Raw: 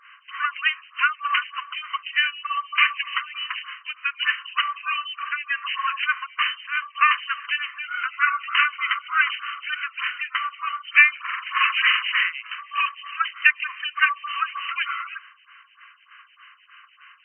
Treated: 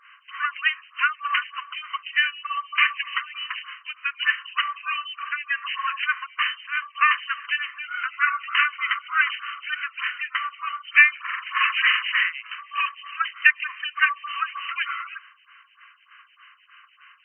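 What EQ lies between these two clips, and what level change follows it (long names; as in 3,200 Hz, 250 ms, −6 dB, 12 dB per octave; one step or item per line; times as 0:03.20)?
dynamic equaliser 1,800 Hz, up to +4 dB, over −35 dBFS, Q 4.6
−2.0 dB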